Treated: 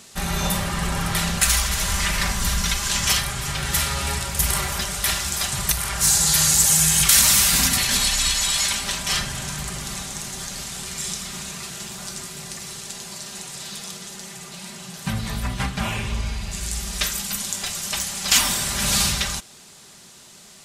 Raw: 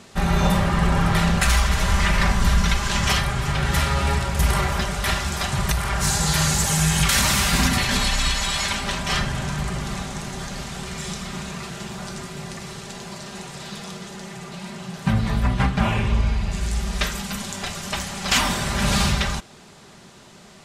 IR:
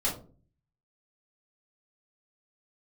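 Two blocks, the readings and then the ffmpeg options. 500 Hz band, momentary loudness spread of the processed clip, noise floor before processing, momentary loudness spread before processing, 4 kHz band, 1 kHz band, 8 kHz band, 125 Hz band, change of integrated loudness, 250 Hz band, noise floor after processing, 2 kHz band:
−6.0 dB, 18 LU, −47 dBFS, 15 LU, +3.0 dB, −4.5 dB, +7.5 dB, −6.5 dB, +2.0 dB, −6.5 dB, −47 dBFS, −2.0 dB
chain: -af "crystalizer=i=4.5:c=0,volume=-6.5dB"

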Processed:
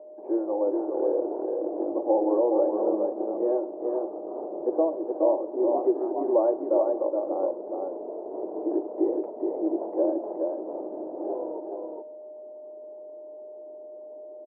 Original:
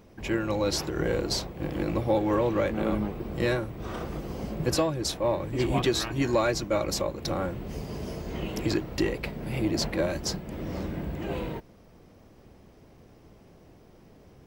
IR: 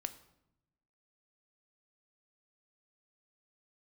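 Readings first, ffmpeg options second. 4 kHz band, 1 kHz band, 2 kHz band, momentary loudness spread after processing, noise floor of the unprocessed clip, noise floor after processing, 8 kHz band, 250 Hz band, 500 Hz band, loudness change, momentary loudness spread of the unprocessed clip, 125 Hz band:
below −40 dB, +0.5 dB, below −25 dB, 19 LU, −55 dBFS, −43 dBFS, below −40 dB, +1.0 dB, +5.0 dB, +1.5 dB, 10 LU, below −30 dB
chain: -filter_complex "[0:a]aeval=exprs='val(0)+0.00501*sin(2*PI*610*n/s)':channel_layout=same,asuperpass=centerf=530:order=8:qfactor=0.96,aecho=1:1:421:0.631,asplit=2[link_01][link_02];[1:a]atrim=start_sample=2205[link_03];[link_02][link_03]afir=irnorm=-1:irlink=0,volume=5dB[link_04];[link_01][link_04]amix=inputs=2:normalize=0,volume=-4.5dB"

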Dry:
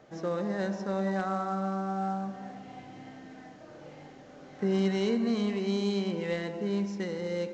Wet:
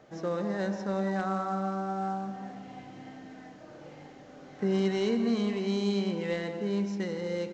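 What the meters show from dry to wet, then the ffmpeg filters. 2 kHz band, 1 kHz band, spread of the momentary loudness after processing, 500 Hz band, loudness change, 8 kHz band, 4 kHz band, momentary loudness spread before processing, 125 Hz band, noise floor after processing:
0.0 dB, +0.5 dB, 21 LU, +0.5 dB, 0.0 dB, can't be measured, 0.0 dB, 21 LU, 0.0 dB, −50 dBFS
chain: -filter_complex "[0:a]asplit=2[link_01][link_02];[link_02]adelay=169.1,volume=-13dB,highshelf=frequency=4000:gain=-3.8[link_03];[link_01][link_03]amix=inputs=2:normalize=0"

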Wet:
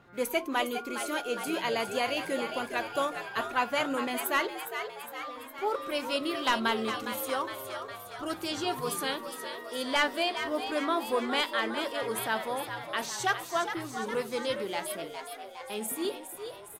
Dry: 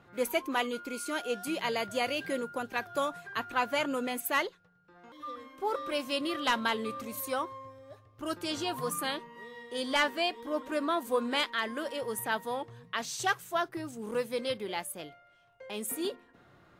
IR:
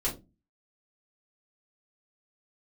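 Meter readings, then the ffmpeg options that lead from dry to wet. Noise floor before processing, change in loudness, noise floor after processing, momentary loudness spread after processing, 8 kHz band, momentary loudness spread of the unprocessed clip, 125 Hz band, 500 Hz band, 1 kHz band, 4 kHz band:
−61 dBFS, +1.5 dB, −45 dBFS, 10 LU, +1.5 dB, 11 LU, +1.0 dB, +1.5 dB, +2.0 dB, +2.0 dB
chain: -filter_complex "[0:a]asplit=9[link_01][link_02][link_03][link_04][link_05][link_06][link_07][link_08][link_09];[link_02]adelay=410,afreqshift=89,volume=-8.5dB[link_10];[link_03]adelay=820,afreqshift=178,volume=-12.8dB[link_11];[link_04]adelay=1230,afreqshift=267,volume=-17.1dB[link_12];[link_05]adelay=1640,afreqshift=356,volume=-21.4dB[link_13];[link_06]adelay=2050,afreqshift=445,volume=-25.7dB[link_14];[link_07]adelay=2460,afreqshift=534,volume=-30dB[link_15];[link_08]adelay=2870,afreqshift=623,volume=-34.3dB[link_16];[link_09]adelay=3280,afreqshift=712,volume=-38.6dB[link_17];[link_01][link_10][link_11][link_12][link_13][link_14][link_15][link_16][link_17]amix=inputs=9:normalize=0,asplit=2[link_18][link_19];[1:a]atrim=start_sample=2205[link_20];[link_19][link_20]afir=irnorm=-1:irlink=0,volume=-19dB[link_21];[link_18][link_21]amix=inputs=2:normalize=0"

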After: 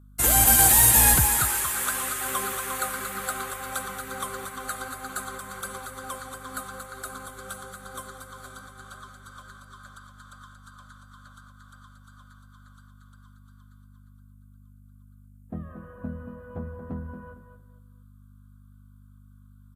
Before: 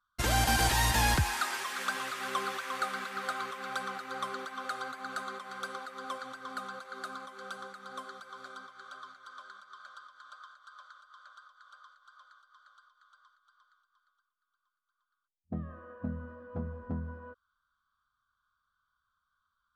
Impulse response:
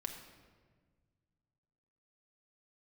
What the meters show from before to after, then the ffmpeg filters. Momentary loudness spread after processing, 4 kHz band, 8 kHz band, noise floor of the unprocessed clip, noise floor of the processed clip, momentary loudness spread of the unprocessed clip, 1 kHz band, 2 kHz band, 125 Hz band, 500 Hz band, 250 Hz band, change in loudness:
25 LU, +2.5 dB, +17.0 dB, −83 dBFS, −52 dBFS, 24 LU, +3.0 dB, +3.0 dB, +3.5 dB, +4.0 dB, +4.0 dB, +13.0 dB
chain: -filter_complex "[0:a]acrossover=split=180[link_01][link_02];[link_02]aexciter=amount=10.2:drive=2.2:freq=7400[link_03];[link_01][link_03]amix=inputs=2:normalize=0,aeval=exprs='val(0)+0.00282*(sin(2*PI*50*n/s)+sin(2*PI*2*50*n/s)/2+sin(2*PI*3*50*n/s)/3+sin(2*PI*4*50*n/s)/4+sin(2*PI*5*50*n/s)/5)':channel_layout=same,aecho=1:1:229|458|687:0.355|0.0958|0.0259,volume=1.5dB" -ar 32000 -c:a aac -b:a 48k

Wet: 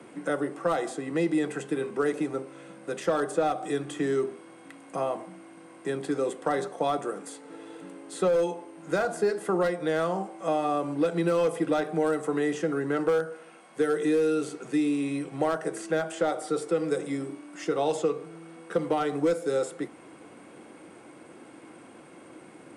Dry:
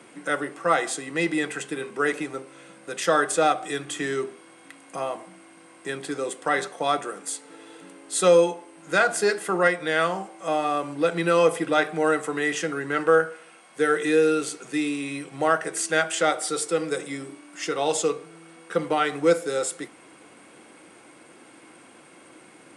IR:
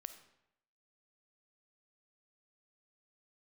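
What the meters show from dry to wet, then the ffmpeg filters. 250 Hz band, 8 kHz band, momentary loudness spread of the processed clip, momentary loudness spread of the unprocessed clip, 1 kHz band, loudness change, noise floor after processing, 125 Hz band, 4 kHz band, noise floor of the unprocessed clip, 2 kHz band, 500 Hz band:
+0.5 dB, −12.0 dB, 13 LU, 13 LU, −5.5 dB, −4.0 dB, −50 dBFS, 0.0 dB, −10.0 dB, −51 dBFS, −10.5 dB, −3.0 dB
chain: -filter_complex "[0:a]asoftclip=type=hard:threshold=-14dB,acrossover=split=130|1300|3300[link_01][link_02][link_03][link_04];[link_01]acompressor=threshold=-53dB:ratio=4[link_05];[link_02]acompressor=threshold=-25dB:ratio=4[link_06];[link_03]acompressor=threshold=-42dB:ratio=4[link_07];[link_04]acompressor=threshold=-38dB:ratio=4[link_08];[link_05][link_06][link_07][link_08]amix=inputs=4:normalize=0,tiltshelf=frequency=1200:gain=5,volume=-1dB"

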